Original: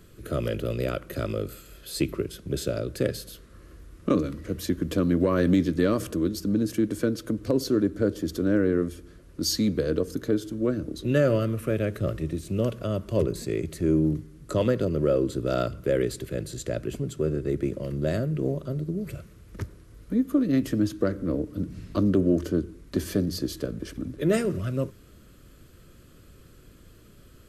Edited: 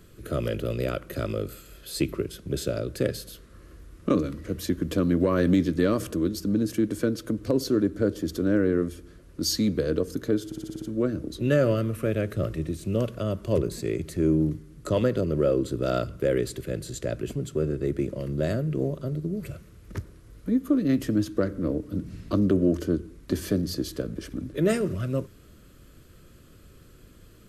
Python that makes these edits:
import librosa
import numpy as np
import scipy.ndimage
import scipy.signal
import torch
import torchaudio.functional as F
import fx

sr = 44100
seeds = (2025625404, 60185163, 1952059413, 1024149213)

y = fx.edit(x, sr, fx.stutter(start_s=10.46, slice_s=0.06, count=7), tone=tone)